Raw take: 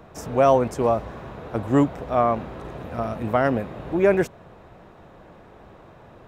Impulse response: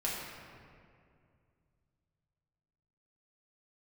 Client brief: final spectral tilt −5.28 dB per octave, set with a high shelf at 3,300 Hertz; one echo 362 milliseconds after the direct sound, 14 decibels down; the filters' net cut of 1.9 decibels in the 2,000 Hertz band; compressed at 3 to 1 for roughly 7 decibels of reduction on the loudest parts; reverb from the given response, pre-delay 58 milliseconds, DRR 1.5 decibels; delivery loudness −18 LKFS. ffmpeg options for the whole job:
-filter_complex "[0:a]equalizer=frequency=2000:width_type=o:gain=-3.5,highshelf=frequency=3300:gain=3.5,acompressor=threshold=-22dB:ratio=3,aecho=1:1:362:0.2,asplit=2[link_01][link_02];[1:a]atrim=start_sample=2205,adelay=58[link_03];[link_02][link_03]afir=irnorm=-1:irlink=0,volume=-7dB[link_04];[link_01][link_04]amix=inputs=2:normalize=0,volume=8dB"

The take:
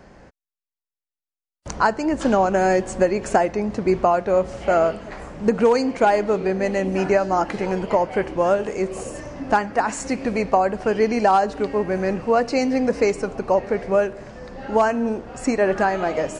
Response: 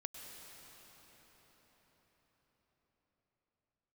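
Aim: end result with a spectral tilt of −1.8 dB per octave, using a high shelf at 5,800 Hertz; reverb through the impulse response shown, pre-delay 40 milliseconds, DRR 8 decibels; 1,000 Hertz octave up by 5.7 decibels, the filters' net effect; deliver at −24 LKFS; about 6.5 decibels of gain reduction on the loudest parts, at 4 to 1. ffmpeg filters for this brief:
-filter_complex "[0:a]equalizer=frequency=1000:width_type=o:gain=8,highshelf=frequency=5800:gain=-6.5,acompressor=threshold=-15dB:ratio=4,asplit=2[link_01][link_02];[1:a]atrim=start_sample=2205,adelay=40[link_03];[link_02][link_03]afir=irnorm=-1:irlink=0,volume=-5.5dB[link_04];[link_01][link_04]amix=inputs=2:normalize=0,volume=-3dB"

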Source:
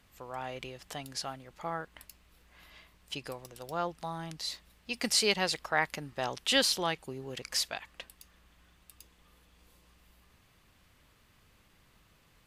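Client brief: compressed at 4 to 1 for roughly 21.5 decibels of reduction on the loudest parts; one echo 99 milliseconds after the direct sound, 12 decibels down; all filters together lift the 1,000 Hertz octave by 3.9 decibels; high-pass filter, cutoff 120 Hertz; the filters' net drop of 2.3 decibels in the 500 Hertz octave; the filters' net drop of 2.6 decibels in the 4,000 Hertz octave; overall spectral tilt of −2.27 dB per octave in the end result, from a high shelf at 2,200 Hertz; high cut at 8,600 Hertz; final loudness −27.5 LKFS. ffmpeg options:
ffmpeg -i in.wav -af "highpass=120,lowpass=8600,equalizer=frequency=500:width_type=o:gain=-5,equalizer=frequency=1000:width_type=o:gain=6.5,highshelf=frequency=2200:gain=4,equalizer=frequency=4000:width_type=o:gain=-7.5,acompressor=threshold=-48dB:ratio=4,aecho=1:1:99:0.251,volume=22.5dB" out.wav

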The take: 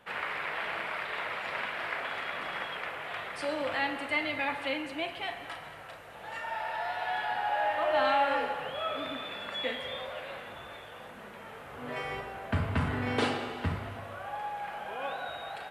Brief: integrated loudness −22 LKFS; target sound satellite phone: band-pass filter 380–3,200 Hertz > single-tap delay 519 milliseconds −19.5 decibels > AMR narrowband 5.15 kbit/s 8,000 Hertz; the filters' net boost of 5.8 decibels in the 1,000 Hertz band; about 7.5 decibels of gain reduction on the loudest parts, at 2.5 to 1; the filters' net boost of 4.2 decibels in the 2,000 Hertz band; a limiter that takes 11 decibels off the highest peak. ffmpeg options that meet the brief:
ffmpeg -i in.wav -af "equalizer=frequency=1000:width_type=o:gain=7,equalizer=frequency=2000:width_type=o:gain=3.5,acompressor=threshold=-29dB:ratio=2.5,alimiter=level_in=2.5dB:limit=-24dB:level=0:latency=1,volume=-2.5dB,highpass=380,lowpass=3200,aecho=1:1:519:0.106,volume=18dB" -ar 8000 -c:a libopencore_amrnb -b:a 5150 out.amr

